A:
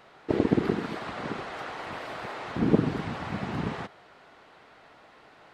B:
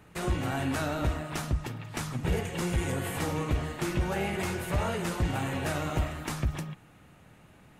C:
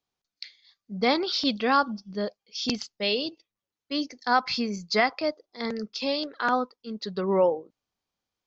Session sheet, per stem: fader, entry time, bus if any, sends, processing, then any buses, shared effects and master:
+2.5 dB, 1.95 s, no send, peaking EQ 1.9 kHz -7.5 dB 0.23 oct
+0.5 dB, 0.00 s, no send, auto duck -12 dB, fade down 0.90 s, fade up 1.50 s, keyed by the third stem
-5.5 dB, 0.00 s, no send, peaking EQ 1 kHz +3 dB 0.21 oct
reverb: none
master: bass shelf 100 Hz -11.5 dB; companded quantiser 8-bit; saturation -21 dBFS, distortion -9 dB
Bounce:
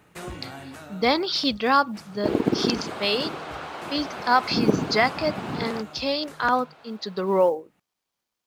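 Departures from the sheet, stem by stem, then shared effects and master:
stem C -5.5 dB -> +2.5 dB; master: missing saturation -21 dBFS, distortion -9 dB

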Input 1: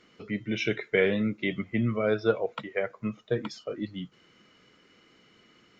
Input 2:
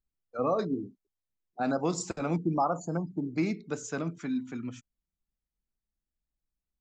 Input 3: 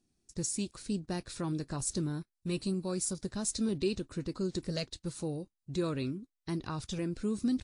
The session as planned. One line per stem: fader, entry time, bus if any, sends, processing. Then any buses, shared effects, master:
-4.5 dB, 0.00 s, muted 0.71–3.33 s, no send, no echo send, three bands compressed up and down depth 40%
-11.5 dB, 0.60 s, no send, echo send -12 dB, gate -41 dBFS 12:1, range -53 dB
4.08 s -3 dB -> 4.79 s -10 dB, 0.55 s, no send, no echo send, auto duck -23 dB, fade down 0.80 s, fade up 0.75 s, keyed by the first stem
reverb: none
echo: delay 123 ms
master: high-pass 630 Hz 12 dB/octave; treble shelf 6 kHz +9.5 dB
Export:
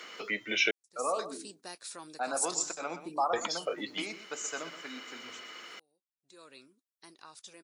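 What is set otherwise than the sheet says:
stem 1 -4.5 dB -> +4.5 dB; stem 2 -11.5 dB -> -0.5 dB

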